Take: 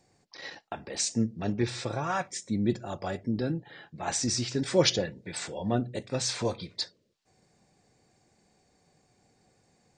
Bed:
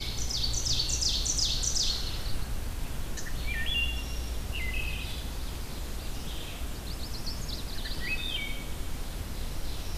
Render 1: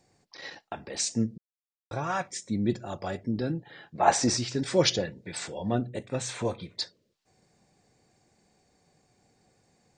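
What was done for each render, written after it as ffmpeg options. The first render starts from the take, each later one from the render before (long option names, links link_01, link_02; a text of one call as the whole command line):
ffmpeg -i in.wav -filter_complex "[0:a]asettb=1/sr,asplit=3[link_01][link_02][link_03];[link_01]atrim=end=3.954[link_04];[link_02]atrim=start=3.95:end=4.37,asetpts=PTS-STARTPTS,afade=type=in:duration=0.004:curve=qsin,afade=type=out:start_time=0.416:duration=0.004:curve=qsin,equalizer=frequency=750:width_type=o:width=2.6:gain=13.5[link_05];[link_03]atrim=start=4.366[link_06];[link_04][link_05]acrossfade=duration=0.004:curve1=hsin:curve2=qsin[link_07];[link_07][link_06]acrossfade=duration=0.004:curve1=qsin:curve2=hsin,asettb=1/sr,asplit=3[link_08][link_09][link_10];[link_08]atrim=end=5.894[link_11];[link_09]atrim=start=5.89:end=6.79,asetpts=PTS-STARTPTS,afade=type=in:duration=0.004:curve=qsin,afade=type=out:start_time=0.896:duration=0.004:curve=qsin,equalizer=frequency=4900:width_type=o:width=0.49:gain=-13.5[link_12];[link_10]atrim=start=6.786[link_13];[link_11][link_12]acrossfade=duration=0.004:curve1=hsin:curve2=qsin[link_14];[link_14][link_13]acrossfade=duration=0.004:curve1=qsin:curve2=hsin,asplit=3[link_15][link_16][link_17];[link_15]atrim=end=1.38,asetpts=PTS-STARTPTS,afade=type=out:start_time=1.376:duration=0.004:curve=hsin[link_18];[link_16]atrim=start=1.38:end=1.91,asetpts=PTS-STARTPTS,volume=0[link_19];[link_17]atrim=start=1.91,asetpts=PTS-STARTPTS,afade=type=in:duration=0.004:curve=hsin[link_20];[link_18][link_19][link_20]concat=n=3:v=0:a=1" out.wav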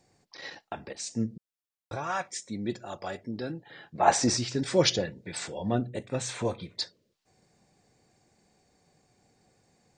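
ffmpeg -i in.wav -filter_complex "[0:a]asettb=1/sr,asplit=3[link_01][link_02][link_03];[link_01]atrim=end=1.964[link_04];[link_02]atrim=start=1.96:end=3.7,asetpts=PTS-STARTPTS,afade=type=in:duration=0.004:curve=qsin,afade=type=out:start_time=1.736:duration=0.004:curve=qsin,lowshelf=frequency=300:gain=-10[link_05];[link_03]atrim=start=3.696[link_06];[link_04][link_05]acrossfade=duration=0.004:curve1=hsin:curve2=qsin[link_07];[link_07][link_06]acrossfade=duration=0.004:curve1=qsin:curve2=hsin,asplit=2[link_08][link_09];[link_08]atrim=end=0.93,asetpts=PTS-STARTPTS,afade=type=out:start_time=0.926:duration=0.004:curve=hsin:silence=0.199526[link_10];[link_09]atrim=start=0.93,asetpts=PTS-STARTPTS,afade=type=in:duration=0.41:silence=0.199526[link_11];[link_10][link_11]concat=n=2:v=0:a=1" out.wav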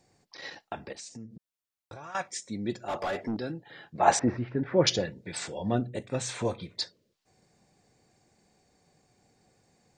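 ffmpeg -i in.wav -filter_complex "[0:a]asettb=1/sr,asplit=3[link_01][link_02][link_03];[link_01]atrim=end=0.994[link_04];[link_02]atrim=start=0.99:end=2.15,asetpts=PTS-STARTPTS,afade=type=in:duration=0.004:curve=qsin,afade=type=out:start_time=1.156:duration=0.004:curve=qsin,acompressor=threshold=-41dB:ratio=5:attack=3.2:release=140:knee=1:detection=peak[link_05];[link_03]atrim=start=2.146[link_06];[link_04][link_05]acrossfade=duration=0.004:curve1=hsin:curve2=qsin[link_07];[link_07][link_06]acrossfade=duration=0.004:curve1=qsin:curve2=hsin,asettb=1/sr,asplit=3[link_08][link_09][link_10];[link_08]atrim=end=2.884[link_11];[link_09]atrim=start=2.88:end=3.37,asetpts=PTS-STARTPTS,afade=type=in:duration=0.004:curve=qsin,afade=type=out:start_time=0.486:duration=0.004:curve=qsin,asplit=2[link_12][link_13];[link_13]highpass=frequency=720:poles=1,volume=25dB,asoftclip=type=tanh:threshold=-22.5dB[link_14];[link_12][link_14]amix=inputs=2:normalize=0,lowpass=frequency=1400:poles=1,volume=-6dB[link_15];[link_10]atrim=start=3.366[link_16];[link_11][link_15]acrossfade=duration=0.004:curve1=hsin:curve2=qsin[link_17];[link_17][link_16]acrossfade=duration=0.004:curve1=qsin:curve2=hsin,asettb=1/sr,asplit=3[link_18][link_19][link_20];[link_18]atrim=end=4.194[link_21];[link_19]atrim=start=4.19:end=4.87,asetpts=PTS-STARTPTS,afade=type=in:duration=0.004:curve=qsin,afade=type=out:start_time=0.676:duration=0.004:curve=qsin,lowpass=frequency=1900:width=0.5412,lowpass=frequency=1900:width=1.3066[link_22];[link_20]atrim=start=4.866[link_23];[link_21][link_22]acrossfade=duration=0.004:curve1=hsin:curve2=qsin[link_24];[link_24][link_23]acrossfade=duration=0.004:curve1=qsin:curve2=hsin" out.wav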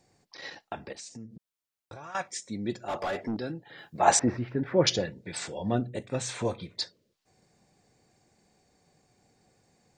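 ffmpeg -i in.wav -filter_complex "[0:a]asettb=1/sr,asplit=3[link_01][link_02][link_03];[link_01]atrim=end=3.784[link_04];[link_02]atrim=start=3.78:end=4.73,asetpts=PTS-STARTPTS,afade=type=in:duration=0.004:curve=qsin,afade=type=out:start_time=0.946:duration=0.004:curve=qsin,highshelf=frequency=6700:gain=12[link_05];[link_03]atrim=start=4.726[link_06];[link_04][link_05]acrossfade=duration=0.004:curve1=hsin:curve2=qsin[link_07];[link_07][link_06]acrossfade=duration=0.004:curve1=qsin:curve2=hsin" out.wav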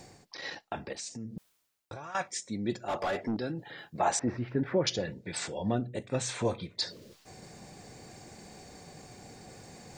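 ffmpeg -i in.wav -af "alimiter=limit=-17dB:level=0:latency=1:release=373,areverse,acompressor=mode=upward:threshold=-34dB:ratio=2.5,areverse" out.wav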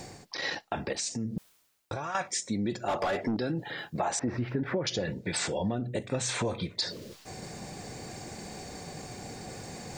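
ffmpeg -i in.wav -filter_complex "[0:a]asplit=2[link_01][link_02];[link_02]alimiter=level_in=5dB:limit=-24dB:level=0:latency=1,volume=-5dB,volume=3dB[link_03];[link_01][link_03]amix=inputs=2:normalize=0,acompressor=threshold=-26dB:ratio=10" out.wav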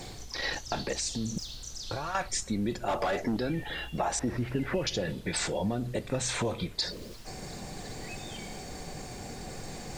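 ffmpeg -i in.wav -i bed.wav -filter_complex "[1:a]volume=-13dB[link_01];[0:a][link_01]amix=inputs=2:normalize=0" out.wav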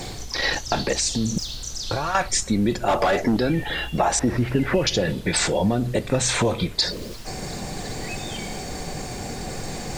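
ffmpeg -i in.wav -af "volume=9.5dB" out.wav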